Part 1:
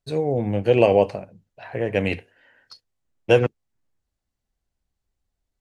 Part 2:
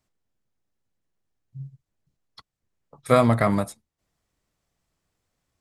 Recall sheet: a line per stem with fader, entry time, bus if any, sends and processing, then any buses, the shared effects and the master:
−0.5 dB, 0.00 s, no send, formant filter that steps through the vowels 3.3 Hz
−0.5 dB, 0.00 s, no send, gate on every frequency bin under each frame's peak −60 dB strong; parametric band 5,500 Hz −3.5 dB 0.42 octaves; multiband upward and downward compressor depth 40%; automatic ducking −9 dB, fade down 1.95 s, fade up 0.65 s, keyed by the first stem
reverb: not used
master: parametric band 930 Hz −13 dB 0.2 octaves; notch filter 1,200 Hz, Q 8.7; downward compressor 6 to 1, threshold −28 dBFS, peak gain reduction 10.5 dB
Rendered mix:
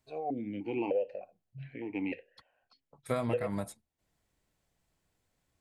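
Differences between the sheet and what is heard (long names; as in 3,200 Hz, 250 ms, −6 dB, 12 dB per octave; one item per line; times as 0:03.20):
stem 2: missing multiband upward and downward compressor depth 40%
master: missing parametric band 930 Hz −13 dB 0.2 octaves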